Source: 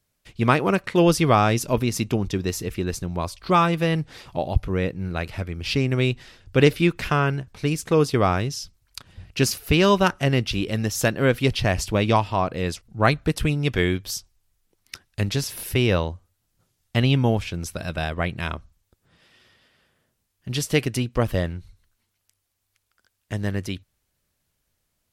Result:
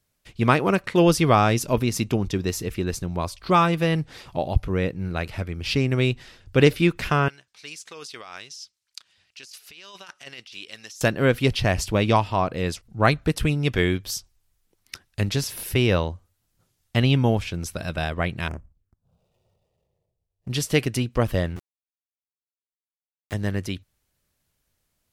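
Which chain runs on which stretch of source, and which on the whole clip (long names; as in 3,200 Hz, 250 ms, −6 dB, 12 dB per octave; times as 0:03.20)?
0:07.28–0:11.01: low-pass filter 5,500 Hz + first difference + compressor whose output falls as the input rises −41 dBFS
0:18.48–0:20.50: running median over 41 samples + phaser swept by the level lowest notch 240 Hz, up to 3,900 Hz, full sweep at −37 dBFS
0:21.56–0:23.34: high-pass filter 70 Hz + centre clipping without the shift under −33 dBFS
whole clip: no processing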